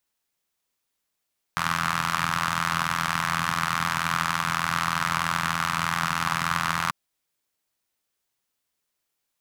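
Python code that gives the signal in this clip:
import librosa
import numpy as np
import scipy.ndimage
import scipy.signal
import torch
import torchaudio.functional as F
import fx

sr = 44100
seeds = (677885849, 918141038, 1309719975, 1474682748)

y = fx.engine_four(sr, seeds[0], length_s=5.34, rpm=2500, resonances_hz=(150.0, 1200.0))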